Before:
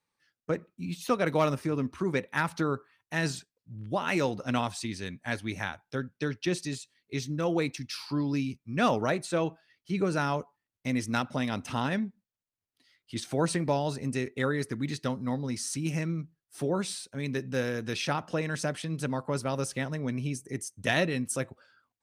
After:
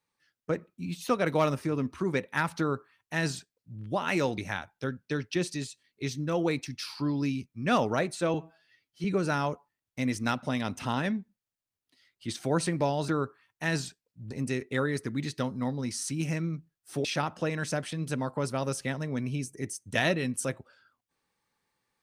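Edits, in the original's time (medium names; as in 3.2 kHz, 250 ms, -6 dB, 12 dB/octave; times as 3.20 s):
2.59–3.81 s: copy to 13.96 s
4.38–5.49 s: delete
9.45–9.92 s: stretch 1.5×
16.70–17.96 s: delete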